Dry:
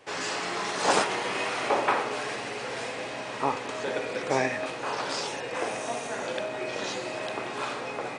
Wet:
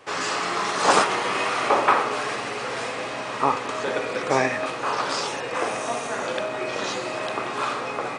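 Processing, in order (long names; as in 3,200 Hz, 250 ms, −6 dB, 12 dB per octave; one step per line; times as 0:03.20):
parametric band 1,200 Hz +7 dB 0.37 octaves
level +4 dB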